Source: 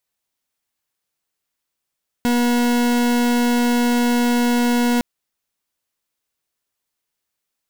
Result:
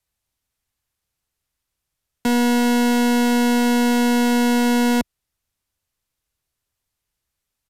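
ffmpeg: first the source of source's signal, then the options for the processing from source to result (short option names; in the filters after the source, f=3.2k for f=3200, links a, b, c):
-f lavfi -i "aevalsrc='0.141*(2*lt(mod(241*t,1),0.4)-1)':d=2.76:s=44100"
-filter_complex "[0:a]acrossover=split=110|1500|6000[a][b][c][d];[a]aeval=exprs='0.0398*sin(PI/2*4.47*val(0)/0.0398)':c=same[e];[e][b][c][d]amix=inputs=4:normalize=0,aresample=32000,aresample=44100"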